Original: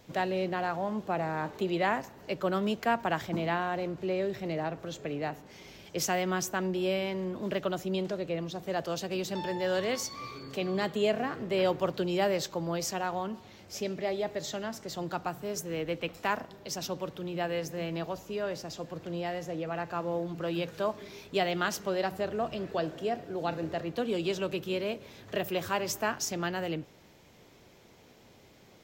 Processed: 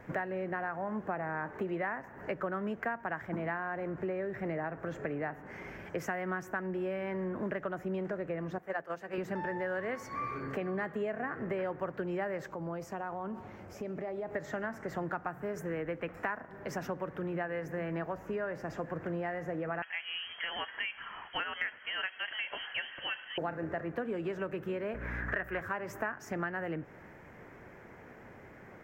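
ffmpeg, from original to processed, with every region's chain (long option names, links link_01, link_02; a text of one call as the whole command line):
ffmpeg -i in.wav -filter_complex "[0:a]asettb=1/sr,asplit=3[link_01][link_02][link_03];[link_01]atrim=end=8.584[link_04];[link_02]atrim=start=8.58:end=9.18,asetpts=PTS-STARTPTS,afade=type=in:duration=0.004:curve=qsin,afade=type=out:start_time=0.596:duration=0.004:curve=qsin,agate=range=-9dB:threshold=-33dB:ratio=16:release=100:detection=peak,lowshelf=frequency=330:gain=-10,bandreject=frequency=60:width_type=h:width=6,bandreject=frequency=120:width_type=h:width=6,bandreject=frequency=180:width_type=h:width=6,bandreject=frequency=240:width_type=h:width=6,bandreject=frequency=300:width_type=h:width=6,bandreject=frequency=360:width_type=h:width=6,bandreject=frequency=420:width_type=h:width=6[link_05];[link_03]atrim=start=9.176[link_06];[link_04][link_05]acrossfade=duration=0.004:curve1=hsin:curve2=qsin[link_07];[link_07][link_06]acrossfade=duration=0.004:curve1=qsin:curve2=hsin,asettb=1/sr,asplit=3[link_08][link_09][link_10];[link_08]atrim=end=12.474[link_11];[link_09]atrim=start=12.47:end=14.35,asetpts=PTS-STARTPTS,afade=type=in:duration=0.004:curve=qsin,afade=type=out:start_time=1.876:duration=0.004:curve=qsin,equalizer=frequency=1800:width=2:gain=-9,acompressor=threshold=-41dB:ratio=4:attack=3.2:release=140:knee=1:detection=peak[link_12];[link_10]atrim=start=14.346[link_13];[link_11][link_12]acrossfade=duration=0.004:curve1=hsin:curve2=qsin[link_14];[link_14][link_13]acrossfade=duration=0.004:curve1=qsin:curve2=hsin,asettb=1/sr,asplit=3[link_15][link_16][link_17];[link_15]atrim=end=19.824[link_18];[link_16]atrim=start=19.82:end=23.38,asetpts=PTS-STARTPTS,afade=type=in:duration=0.004:curve=qsin,afade=type=out:start_time=3.556:duration=0.004:curve=qsin,highpass=110,lowpass=frequency=2900:width_type=q:width=0.5098,lowpass=frequency=2900:width_type=q:width=0.6013,lowpass=frequency=2900:width_type=q:width=0.9,lowpass=frequency=2900:width_type=q:width=2.563,afreqshift=-3400[link_19];[link_17]atrim=start=23.376[link_20];[link_18][link_19]acrossfade=duration=0.004:curve1=hsin:curve2=qsin[link_21];[link_21][link_20]acrossfade=duration=0.004:curve1=qsin:curve2=hsin,asettb=1/sr,asplit=3[link_22][link_23][link_24];[link_22]atrim=end=24.944[link_25];[link_23]atrim=start=24.94:end=25.61,asetpts=PTS-STARTPTS,afade=type=in:duration=0.004:curve=qsin,afade=type=out:start_time=0.666:duration=0.004:curve=qsin,equalizer=frequency=1600:width=1.2:gain=12.5,aeval=exprs='val(0)+0.00891*(sin(2*PI*60*n/s)+sin(2*PI*2*60*n/s)/2+sin(2*PI*3*60*n/s)/3+sin(2*PI*4*60*n/s)/4+sin(2*PI*5*60*n/s)/5)':channel_layout=same[link_26];[link_24]atrim=start=25.606[link_27];[link_25][link_26]acrossfade=duration=0.004:curve1=hsin:curve2=qsin[link_28];[link_28][link_27]acrossfade=duration=0.004:curve1=qsin:curve2=hsin,highshelf=frequency=2600:width_type=q:width=3:gain=-14,acompressor=threshold=-38dB:ratio=6,volume=5dB" out.wav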